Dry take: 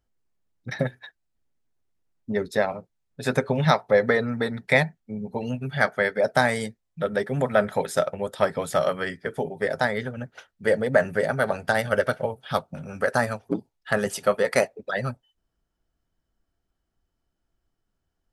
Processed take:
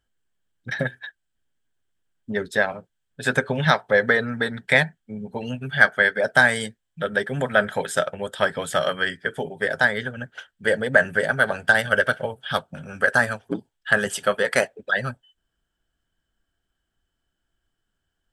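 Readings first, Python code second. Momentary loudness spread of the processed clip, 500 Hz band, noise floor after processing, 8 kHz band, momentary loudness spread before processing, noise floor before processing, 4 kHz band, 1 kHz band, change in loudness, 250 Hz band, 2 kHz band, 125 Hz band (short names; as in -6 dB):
14 LU, -1.0 dB, -78 dBFS, +3.0 dB, 10 LU, -79 dBFS, +6.0 dB, +0.5 dB, +3.0 dB, -1.0 dB, +8.0 dB, -1.0 dB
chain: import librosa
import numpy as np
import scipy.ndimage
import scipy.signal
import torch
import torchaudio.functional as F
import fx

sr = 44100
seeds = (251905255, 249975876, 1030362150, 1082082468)

y = fx.graphic_eq_31(x, sr, hz=(1600, 3150, 8000), db=(12, 12, 8))
y = F.gain(torch.from_numpy(y), -1.0).numpy()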